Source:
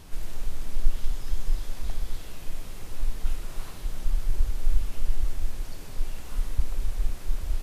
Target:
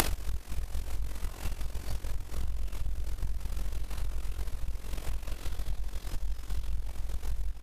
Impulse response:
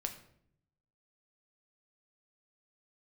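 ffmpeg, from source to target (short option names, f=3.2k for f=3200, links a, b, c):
-filter_complex "[0:a]areverse,lowshelf=f=340:g=-3,asplit=2[a][b];[b]adelay=1167,lowpass=f=2k:p=1,volume=-3dB,asplit=2[c][d];[d]adelay=1167,lowpass=f=2k:p=1,volume=0.31,asplit=2[e][f];[f]adelay=1167,lowpass=f=2k:p=1,volume=0.31,asplit=2[g][h];[h]adelay=1167,lowpass=f=2k:p=1,volume=0.31[i];[a][c][e][g][i]amix=inputs=5:normalize=0[j];[1:a]atrim=start_sample=2205,atrim=end_sample=3528[k];[j][k]afir=irnorm=-1:irlink=0,acompressor=mode=upward:threshold=-22dB:ratio=2.5,asplit=2[l][m];[m]acrusher=bits=2:mix=0:aa=0.5,volume=-9dB[n];[l][n]amix=inputs=2:normalize=0,tremolo=f=44:d=0.75,acompressor=threshold=-34dB:ratio=6,lowshelf=f=60:g=-10,volume=14dB"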